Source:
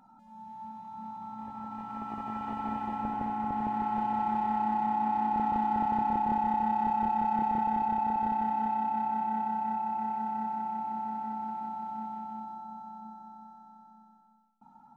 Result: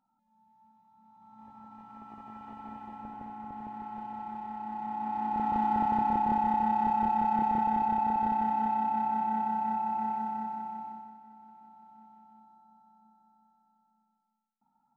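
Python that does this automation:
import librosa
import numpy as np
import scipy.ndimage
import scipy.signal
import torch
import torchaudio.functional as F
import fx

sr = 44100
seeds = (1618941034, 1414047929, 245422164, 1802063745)

y = fx.gain(x, sr, db=fx.line((1.04, -19.5), (1.45, -10.0), (4.59, -10.0), (5.64, 1.0), (10.09, 1.0), (10.87, -6.0), (11.2, -17.0)))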